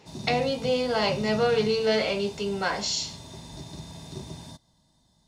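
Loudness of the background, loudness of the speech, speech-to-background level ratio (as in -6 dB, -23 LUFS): -40.0 LUFS, -26.0 LUFS, 14.0 dB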